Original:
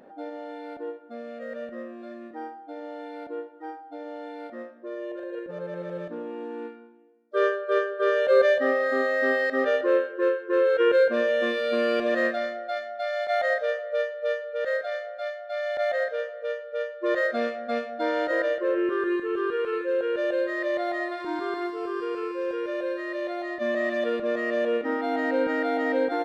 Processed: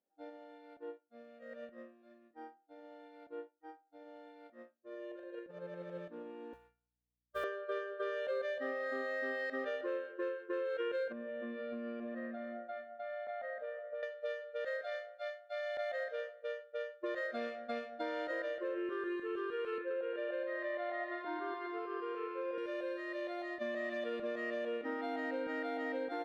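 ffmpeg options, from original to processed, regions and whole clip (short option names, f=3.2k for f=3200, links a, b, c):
-filter_complex "[0:a]asettb=1/sr,asplit=3[a][b][c];[a]atrim=end=6.534[d];[b]atrim=start=6.53:end=7.44,asetpts=PTS-STARTPTS,afade=t=in:d=0.004:c=qsin,afade=t=out:st=0.906:d=0.004:c=qsin,highpass=f=560:w=0.5412,highpass=f=560:w=1.3066,acrusher=bits=6:mode=log:mix=0:aa=0.000001,aeval=exprs='val(0)+0.00355*(sin(2*PI*60*n/s)+sin(2*PI*2*60*n/s)/2+sin(2*PI*3*60*n/s)/3+sin(2*PI*4*60*n/s)/4+sin(2*PI*5*60*n/s)/5)':c=same[e];[c]atrim=start=7.436[f];[d][e]acrossfade=d=0.004:c1=hsin:c2=qsin[g];[g][f]acrossfade=d=0.004:c1=qsin:c2=hsin,asettb=1/sr,asplit=3[h][i][j];[h]atrim=end=11.124[k];[i]atrim=start=11.12:end=14.03,asetpts=PTS-STARTPTS,afade=t=in:d=0.004:c=qsin,afade=t=out:st=2.906:d=0.004:c=qsin,lowpass=1.7k,equalizer=f=230:t=o:w=0.22:g=12.5,acompressor=threshold=-28dB:ratio=16:attack=3.2:release=140:knee=1:detection=peak[l];[j]atrim=start=14.026[m];[k][l]acrossfade=d=0.004:c1=hsin:c2=qsin[n];[n][m]acrossfade=d=0.004:c1=qsin:c2=hsin,asettb=1/sr,asplit=3[o][p][q];[o]atrim=end=19.784[r];[p]atrim=start=19.78:end=22.58,asetpts=PTS-STARTPTS,afade=t=in:d=0.004:c=qsin,afade=t=out:st=2.796:d=0.004:c=qsin,highpass=290,lowpass=2.7k,aecho=1:1:125:0.596,atrim=end_sample=123480[s];[q]atrim=start=22.576[t];[r][s]acrossfade=d=0.004:c1=hsin:c2=qsin[u];[u][t]acrossfade=d=0.004:c1=qsin:c2=hsin,agate=range=-33dB:threshold=-30dB:ratio=3:detection=peak,equalizer=f=2.8k:w=1.2:g=3,acompressor=threshold=-27dB:ratio=5,volume=-8.5dB"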